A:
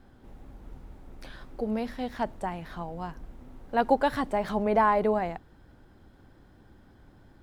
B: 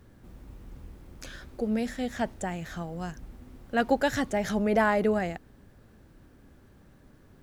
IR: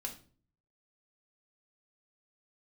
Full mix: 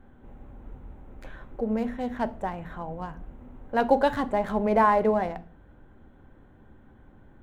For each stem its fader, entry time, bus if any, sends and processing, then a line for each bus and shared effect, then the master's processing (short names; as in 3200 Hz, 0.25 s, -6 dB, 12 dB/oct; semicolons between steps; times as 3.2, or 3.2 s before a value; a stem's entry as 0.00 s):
-1.5 dB, 0.00 s, send -3.5 dB, Wiener smoothing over 9 samples
-17.5 dB, 0.00 s, no send, fixed phaser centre 1300 Hz, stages 6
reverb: on, RT60 0.45 s, pre-delay 4 ms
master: dry